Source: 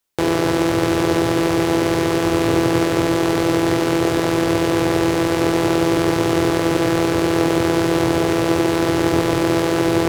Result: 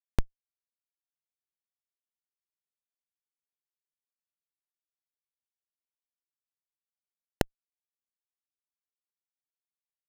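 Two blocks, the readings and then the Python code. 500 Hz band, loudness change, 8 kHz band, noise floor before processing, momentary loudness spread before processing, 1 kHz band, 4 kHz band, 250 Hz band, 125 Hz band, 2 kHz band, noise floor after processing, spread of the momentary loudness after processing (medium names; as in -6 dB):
-30.5 dB, -17.0 dB, -27.0 dB, -20 dBFS, 1 LU, -29.5 dB, -27.5 dB, -31.5 dB, -23.5 dB, -27.5 dB, under -85 dBFS, 5 LU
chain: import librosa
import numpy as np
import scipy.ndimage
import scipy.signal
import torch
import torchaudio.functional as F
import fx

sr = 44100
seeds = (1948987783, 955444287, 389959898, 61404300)

y = fx.rev_schroeder(x, sr, rt60_s=0.75, comb_ms=29, drr_db=13.0)
y = fx.cheby_harmonics(y, sr, harmonics=(5, 6, 7), levels_db=(-12, -9, -15), full_scale_db=-2.0)
y = fx.schmitt(y, sr, flips_db=-9.0)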